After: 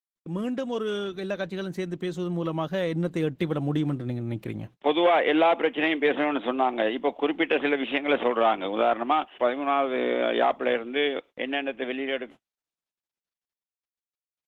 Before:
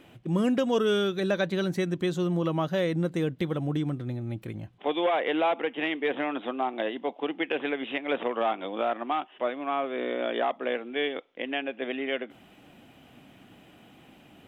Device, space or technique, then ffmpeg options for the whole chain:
video call: -af "highpass=110,dynaudnorm=framelen=380:gausssize=17:maxgain=10.5dB,agate=range=-48dB:threshold=-39dB:ratio=16:detection=peak,volume=-4.5dB" -ar 48000 -c:a libopus -b:a 16k

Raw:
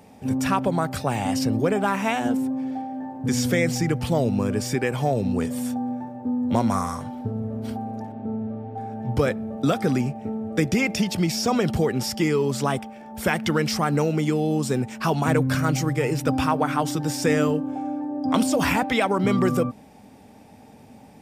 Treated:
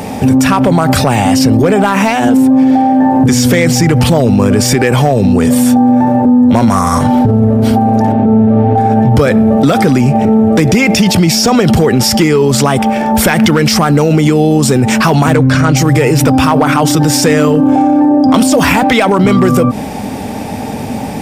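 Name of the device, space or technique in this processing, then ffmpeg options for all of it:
loud club master: -filter_complex "[0:a]acompressor=threshold=-24dB:ratio=2,asoftclip=type=hard:threshold=-18dB,alimiter=level_in=29.5dB:limit=-1dB:release=50:level=0:latency=1,asettb=1/sr,asplit=3[link_01][link_02][link_03];[link_01]atrim=end=15.364[link_04];[link_02]atrim=start=15.36:end=15.77,asetpts=PTS-STARTPTS,afade=type=in:duration=0.004:curve=qsin,afade=type=out:start_time=0.406:duration=0.004:curve=qsin,lowpass=6900[link_05];[link_03]atrim=start=15.766[link_06];[link_04][link_05]acrossfade=duration=0.004:curve1=hsin:curve2=qsin[link_07];[link_07][link_06]acrossfade=duration=0.004:curve1=qsin:curve2=hsin,volume=-1dB"

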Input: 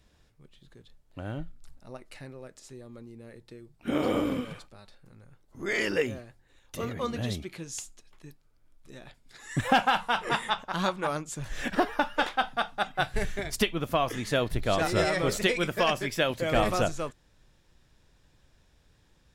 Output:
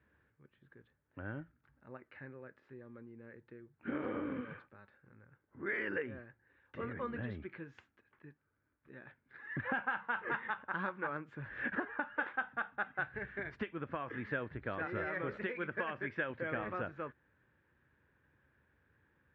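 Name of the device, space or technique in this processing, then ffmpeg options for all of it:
bass amplifier: -af "acompressor=threshold=-29dB:ratio=4,highpass=frequency=76:width=0.5412,highpass=frequency=76:width=1.3066,equalizer=frequency=110:width_type=q:width=4:gain=-3,equalizer=frequency=170:width_type=q:width=4:gain=-5,equalizer=frequency=690:width_type=q:width=4:gain=-8,equalizer=frequency=1600:width_type=q:width=4:gain=9,lowpass=frequency=2200:width=0.5412,lowpass=frequency=2200:width=1.3066,volume=-5.5dB"

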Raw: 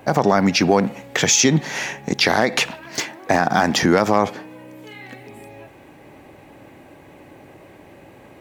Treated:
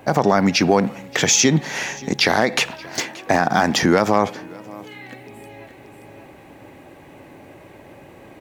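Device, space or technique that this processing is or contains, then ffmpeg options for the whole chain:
ducked delay: -filter_complex "[0:a]asplit=3[link_01][link_02][link_03];[link_02]adelay=578,volume=-4dB[link_04];[link_03]apad=whole_len=396329[link_05];[link_04][link_05]sidechaincompress=threshold=-34dB:ratio=8:attack=16:release=1140[link_06];[link_01][link_06]amix=inputs=2:normalize=0"

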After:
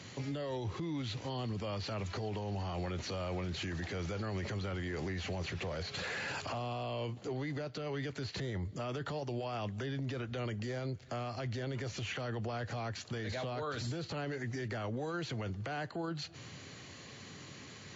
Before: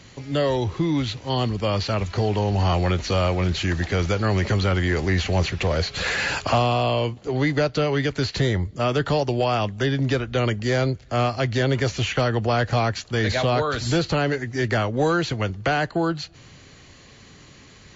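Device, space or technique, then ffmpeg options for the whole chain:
podcast mastering chain: -af "highpass=frequency=90:width=0.5412,highpass=frequency=90:width=1.3066,deesser=0.85,acompressor=threshold=-30dB:ratio=4,alimiter=level_in=5dB:limit=-24dB:level=0:latency=1:release=17,volume=-5dB,volume=-1.5dB" -ar 24000 -c:a libmp3lame -b:a 96k

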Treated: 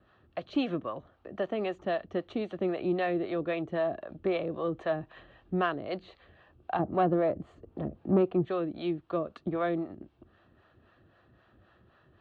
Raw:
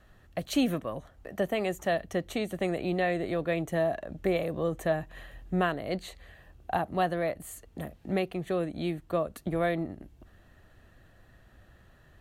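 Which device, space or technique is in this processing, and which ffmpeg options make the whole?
guitar amplifier with harmonic tremolo: -filter_complex "[0:a]asettb=1/sr,asplit=3[link_01][link_02][link_03];[link_01]atrim=end=6.794[link_04];[link_02]atrim=start=6.79:end=8.45,asetpts=PTS-STARTPTS,afade=type=in:duration=0.004:curve=qsin,afade=type=out:start_time=1.656:duration=0.004:curve=qsin,tiltshelf=frequency=1200:gain=9[link_05];[link_03]atrim=start=8.446[link_06];[link_04][link_05]acrossfade=duration=0.004:curve1=hsin:curve2=qsin[link_07];[link_07][link_06]acrossfade=duration=0.004:curve1=qsin:curve2=hsin,acrossover=split=510[link_08][link_09];[link_08]aeval=exprs='val(0)*(1-0.7/2+0.7/2*cos(2*PI*3.8*n/s))':channel_layout=same[link_10];[link_09]aeval=exprs='val(0)*(1-0.7/2-0.7/2*cos(2*PI*3.8*n/s))':channel_layout=same[link_11];[link_10][link_11]amix=inputs=2:normalize=0,asoftclip=type=tanh:threshold=-18.5dB,highpass=98,equalizer=frequency=160:width_type=q:width=4:gain=-3,equalizer=frequency=350:width_type=q:width=4:gain=5,equalizer=frequency=1200:width_type=q:width=4:gain=5,equalizer=frequency=2000:width_type=q:width=4:gain=-6,lowpass=frequency=3900:width=0.5412,lowpass=frequency=3900:width=1.3066,volume=1dB"

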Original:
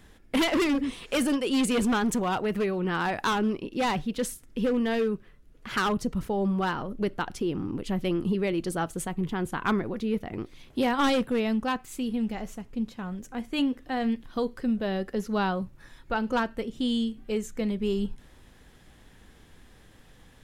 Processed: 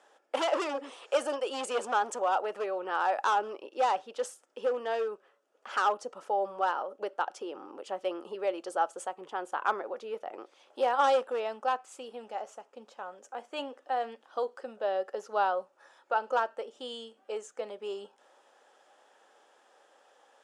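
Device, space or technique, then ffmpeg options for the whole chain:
phone speaker on a table: -af "highpass=frequency=420:width=0.5412,highpass=frequency=420:width=1.3066,equalizer=frequency=570:width_type=q:width=4:gain=9,equalizer=frequency=820:width_type=q:width=4:gain=9,equalizer=frequency=1300:width_type=q:width=4:gain=6,equalizer=frequency=2100:width_type=q:width=4:gain=-7,equalizer=frequency=4000:width_type=q:width=4:gain=-6,lowpass=frequency=8700:width=0.5412,lowpass=frequency=8700:width=1.3066,volume=-5dB"

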